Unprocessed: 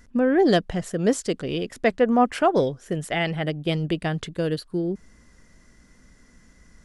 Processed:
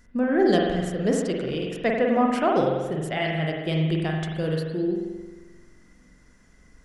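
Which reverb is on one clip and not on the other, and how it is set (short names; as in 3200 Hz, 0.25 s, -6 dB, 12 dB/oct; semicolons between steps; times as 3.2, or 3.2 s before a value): spring tank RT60 1.3 s, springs 44 ms, chirp 70 ms, DRR -0.5 dB; gain -4 dB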